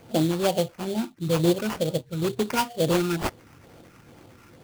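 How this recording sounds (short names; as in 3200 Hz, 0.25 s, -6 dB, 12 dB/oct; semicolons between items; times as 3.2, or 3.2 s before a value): phasing stages 8, 2.2 Hz, lowest notch 580–2700 Hz; aliases and images of a low sample rate 3900 Hz, jitter 20%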